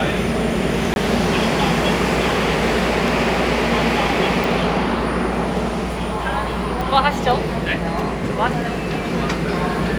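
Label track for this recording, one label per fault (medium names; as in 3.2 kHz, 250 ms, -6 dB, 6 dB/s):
0.940000	0.960000	dropout 21 ms
4.440000	4.440000	pop
6.810000	6.810000	pop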